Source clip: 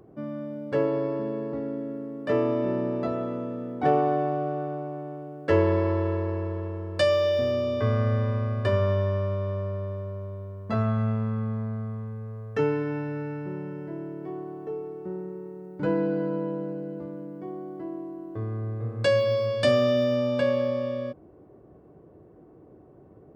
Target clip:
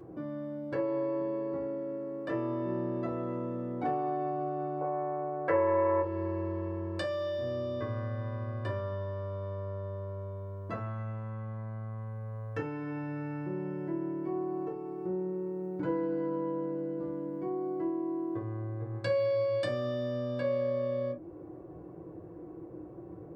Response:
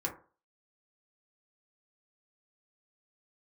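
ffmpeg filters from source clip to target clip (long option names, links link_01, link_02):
-filter_complex "[0:a]asettb=1/sr,asplit=3[link_01][link_02][link_03];[link_01]atrim=end=4.814[link_04];[link_02]atrim=start=4.81:end=6.02,asetpts=PTS-STARTPTS,afade=type=in:duration=0.004:curve=qsin,afade=type=out:start_time=1.206:duration=0.004:curve=qsin,equalizer=frequency=125:width_type=o:width=1:gain=5,equalizer=frequency=250:width_type=o:width=1:gain=-5,equalizer=frequency=500:width_type=o:width=1:gain=12,equalizer=frequency=1000:width_type=o:width=1:gain=11,equalizer=frequency=2000:width_type=o:width=1:gain=12,equalizer=frequency=4000:width_type=o:width=1:gain=-7[link_05];[link_03]atrim=start=6.016[link_06];[link_04][link_05]acrossfade=duration=0.004:curve1=hsin:curve2=qsin[link_07];[link_07][link_06]acrossfade=duration=0.004:curve1=qsin:curve2=hsin,acompressor=threshold=-39dB:ratio=3[link_08];[1:a]atrim=start_sample=2205,atrim=end_sample=3528[link_09];[link_08][link_09]afir=irnorm=-1:irlink=0"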